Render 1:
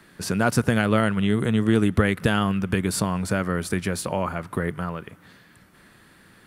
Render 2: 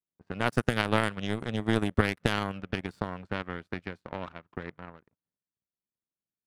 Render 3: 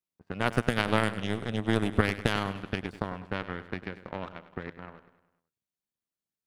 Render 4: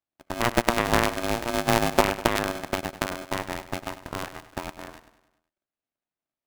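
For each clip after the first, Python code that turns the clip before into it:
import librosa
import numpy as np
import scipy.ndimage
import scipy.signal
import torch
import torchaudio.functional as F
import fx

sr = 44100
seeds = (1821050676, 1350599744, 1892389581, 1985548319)

y1 = fx.env_lowpass(x, sr, base_hz=660.0, full_db=-16.0)
y1 = fx.power_curve(y1, sr, exponent=2.0)
y2 = fx.echo_feedback(y1, sr, ms=100, feedback_pct=54, wet_db=-14.0)
y3 = fx.air_absorb(y2, sr, metres=410.0)
y3 = y3 * np.sign(np.sin(2.0 * np.pi * 470.0 * np.arange(len(y3)) / sr))
y3 = F.gain(torch.from_numpy(y3), 5.0).numpy()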